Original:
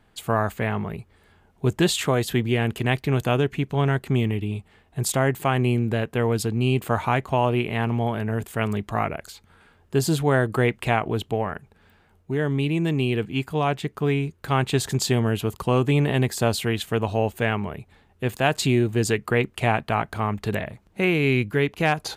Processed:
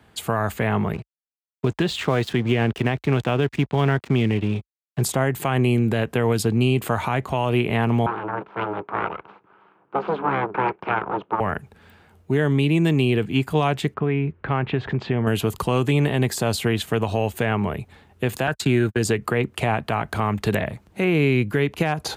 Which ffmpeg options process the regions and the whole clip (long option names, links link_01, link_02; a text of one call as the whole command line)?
ffmpeg -i in.wav -filter_complex "[0:a]asettb=1/sr,asplit=3[link_01][link_02][link_03];[link_01]atrim=end=0.934[link_04];[link_02]atrim=start=0.93:end=5.02,asetpts=PTS-STARTPTS,afade=type=in:duration=0.004:curve=qsin,afade=type=out:start_time=4.086:duration=0.004:curve=qsin,lowpass=4200,aeval=exprs='sgn(val(0))*max(abs(val(0))-0.00794,0)':channel_layout=same[link_05];[link_03]atrim=start=5.016[link_06];[link_04][link_05]acrossfade=duration=0.004:curve1=hsin:curve2=qsin[link_07];[link_07][link_06]acrossfade=duration=0.004:curve1=qsin:curve2=hsin,asettb=1/sr,asplit=3[link_08][link_09][link_10];[link_08]atrim=end=8.064[link_11];[link_09]atrim=start=8.06:end=11.4,asetpts=PTS-STARTPTS,afade=type=in:duration=0.004:curve=qsin,afade=type=out:start_time=3.336:duration=0.004:curve=qsin,aeval=exprs='abs(val(0))':channel_layout=same,tremolo=f=200:d=0.462,highpass=220,equalizer=frequency=240:width_type=q:width=4:gain=-10,equalizer=frequency=400:width_type=q:width=4:gain=6,equalizer=frequency=580:width_type=q:width=4:gain=-4,equalizer=frequency=920:width_type=q:width=4:gain=7,equalizer=frequency=1300:width_type=q:width=4:gain=5,equalizer=frequency=1900:width_type=q:width=4:gain=-9,lowpass=frequency=2200:width=0.5412,lowpass=frequency=2200:width=1.3066[link_12];[link_10]atrim=start=11.396[link_13];[link_11][link_12]acrossfade=duration=0.004:curve1=hsin:curve2=qsin[link_14];[link_14][link_13]acrossfade=duration=0.004:curve1=qsin:curve2=hsin,asettb=1/sr,asplit=3[link_15][link_16][link_17];[link_15]atrim=end=13.944[link_18];[link_16]atrim=start=13.94:end=15.27,asetpts=PTS-STARTPTS,afade=type=in:duration=0.004:curve=qsin,afade=type=out:start_time=1.326:duration=0.004:curve=qsin,lowpass=frequency=2500:width=0.5412,lowpass=frequency=2500:width=1.3066,acompressor=threshold=-26dB:ratio=3:attack=3.2:release=140:knee=1:detection=peak[link_19];[link_17]atrim=start=15.266[link_20];[link_18][link_19]acrossfade=duration=0.004:curve1=hsin:curve2=qsin[link_21];[link_21][link_20]acrossfade=duration=0.004:curve1=qsin:curve2=hsin,asettb=1/sr,asplit=3[link_22][link_23][link_24];[link_22]atrim=end=18.474[link_25];[link_23]atrim=start=18.47:end=18.99,asetpts=PTS-STARTPTS,afade=type=in:duration=0.004:curve=qsin,afade=type=out:start_time=0.516:duration=0.004:curve=qsin,agate=range=-57dB:threshold=-27dB:ratio=16:release=100:detection=peak,equalizer=frequency=1500:width=3.3:gain=12.5[link_26];[link_24]atrim=start=18.986[link_27];[link_25][link_26]acrossfade=duration=0.004:curve1=hsin:curve2=qsin[link_28];[link_28][link_27]acrossfade=duration=0.004:curve1=qsin:curve2=hsin,highpass=frequency=48:width=0.5412,highpass=frequency=48:width=1.3066,acrossover=split=130|1500[link_29][link_30][link_31];[link_29]acompressor=threshold=-34dB:ratio=4[link_32];[link_30]acompressor=threshold=-23dB:ratio=4[link_33];[link_31]acompressor=threshold=-33dB:ratio=4[link_34];[link_32][link_33][link_34]amix=inputs=3:normalize=0,alimiter=limit=-16.5dB:level=0:latency=1:release=85,volume=6.5dB" out.wav